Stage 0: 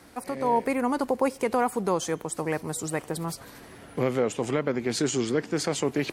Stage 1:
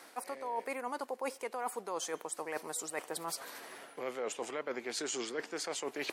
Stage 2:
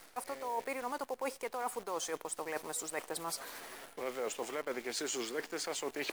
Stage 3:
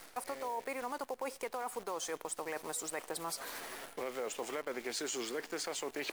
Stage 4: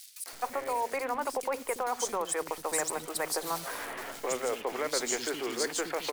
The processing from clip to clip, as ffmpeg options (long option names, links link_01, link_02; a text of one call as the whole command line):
ffmpeg -i in.wav -af "highpass=520,areverse,acompressor=threshold=-36dB:ratio=6,areverse,volume=1dB" out.wav
ffmpeg -i in.wav -af "acrusher=bits=9:dc=4:mix=0:aa=0.000001" out.wav
ffmpeg -i in.wav -af "acompressor=threshold=-38dB:ratio=6,volume=3dB" out.wav
ffmpeg -i in.wav -filter_complex "[0:a]acrossover=split=280|3100[link_01][link_02][link_03];[link_02]adelay=260[link_04];[link_01]adelay=330[link_05];[link_05][link_04][link_03]amix=inputs=3:normalize=0,volume=8dB" out.wav